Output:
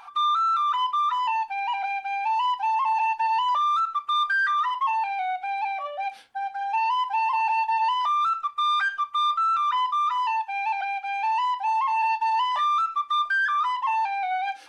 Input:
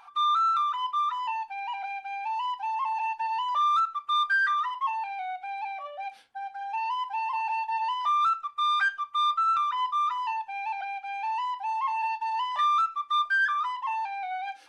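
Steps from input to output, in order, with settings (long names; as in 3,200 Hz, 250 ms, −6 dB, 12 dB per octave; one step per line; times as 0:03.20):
brickwall limiter −25 dBFS, peak gain reduction 7.5 dB
0:09.69–0:11.68: high-pass filter 560 Hz 12 dB per octave
level +6.5 dB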